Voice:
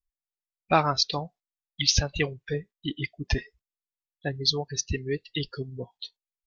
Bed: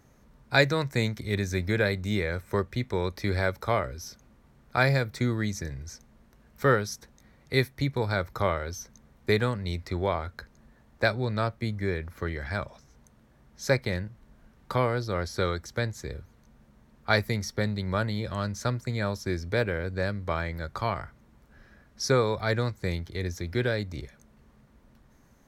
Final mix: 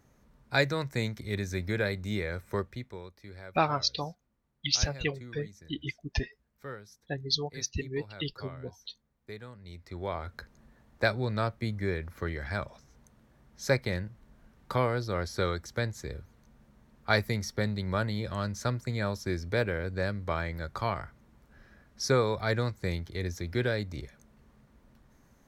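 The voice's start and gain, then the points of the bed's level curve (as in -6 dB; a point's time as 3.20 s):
2.85 s, -4.5 dB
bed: 2.60 s -4.5 dB
3.15 s -19.5 dB
9.47 s -19.5 dB
10.35 s -2 dB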